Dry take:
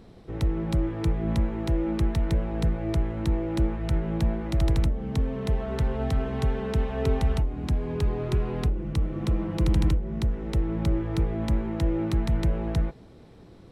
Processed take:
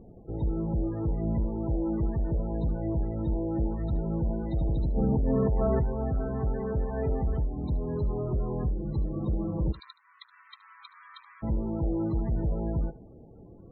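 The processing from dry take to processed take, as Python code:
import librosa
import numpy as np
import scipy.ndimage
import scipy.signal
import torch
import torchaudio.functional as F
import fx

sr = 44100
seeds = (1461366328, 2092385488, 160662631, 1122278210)

y = 10.0 ** (-22.5 / 20.0) * np.tanh(x / 10.0 ** (-22.5 / 20.0))
y = fx.steep_highpass(y, sr, hz=1000.0, slope=72, at=(9.71, 11.42), fade=0.02)
y = fx.spec_topn(y, sr, count=32)
y = y + 10.0 ** (-20.5 / 20.0) * np.pad(y, (int(73 * sr / 1000.0), 0))[:len(y)]
y = fx.env_flatten(y, sr, amount_pct=100, at=(4.94, 5.83), fade=0.02)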